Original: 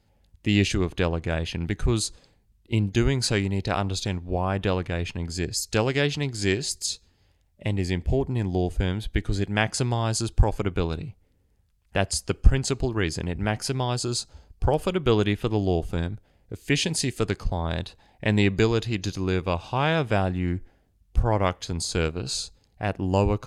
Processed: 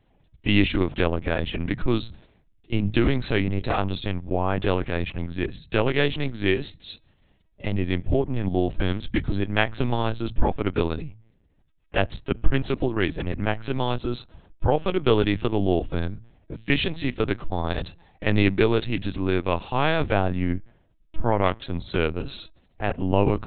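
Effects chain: de-hum 54.55 Hz, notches 3; LPC vocoder at 8 kHz pitch kept; gain +2 dB

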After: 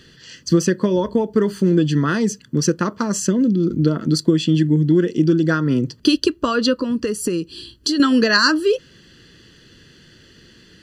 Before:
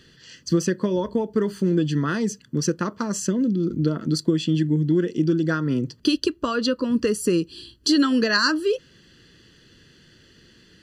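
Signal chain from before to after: 6.76–8 compressor 6:1, threshold -23 dBFS, peak gain reduction 8 dB; gain +5 dB

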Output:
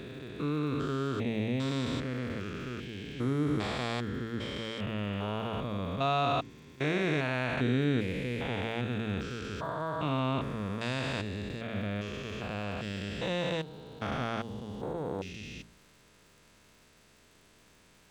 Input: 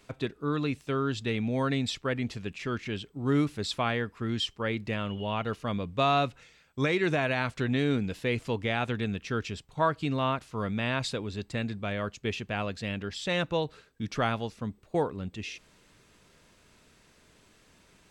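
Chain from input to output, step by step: stepped spectrum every 0.4 s; de-hum 56.4 Hz, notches 7; crackle 250/s -54 dBFS; gain +1 dB

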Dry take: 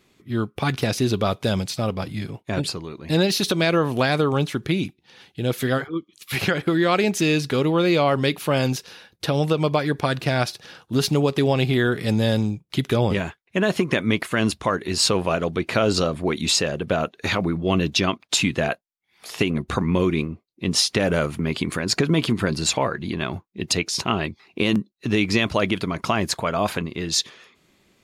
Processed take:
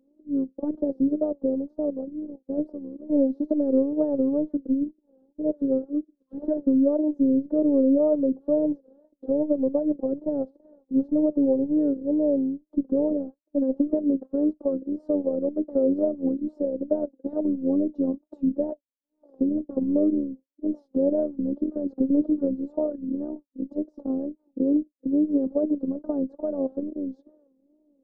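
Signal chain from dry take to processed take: elliptic band-pass 170–570 Hz, stop band 60 dB; robotiser 284 Hz; wow and flutter 130 cents; gain +2.5 dB

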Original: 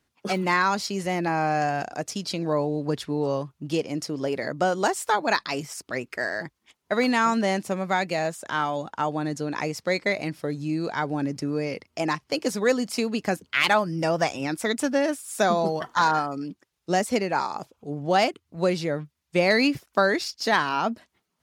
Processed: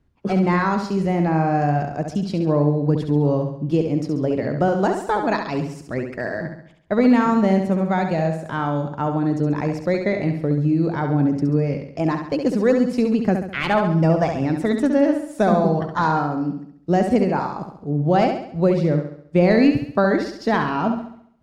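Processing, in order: tilt -4 dB/oct; flutter echo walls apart 11.7 m, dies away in 0.64 s

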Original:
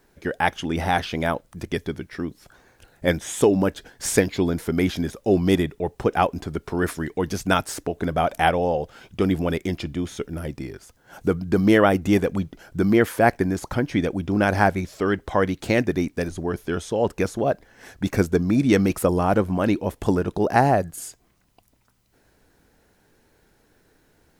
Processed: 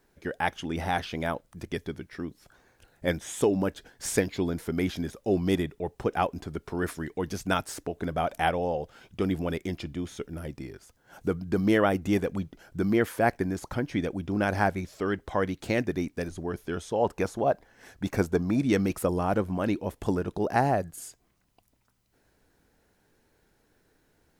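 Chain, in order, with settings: 16.86–18.62 dynamic EQ 850 Hz, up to +7 dB, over -37 dBFS, Q 1.3; gain -6.5 dB

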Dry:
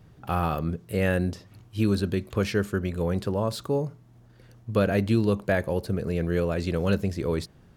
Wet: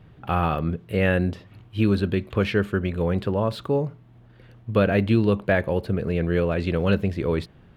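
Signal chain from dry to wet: resonant high shelf 4300 Hz -10.5 dB, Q 1.5; gain +3 dB

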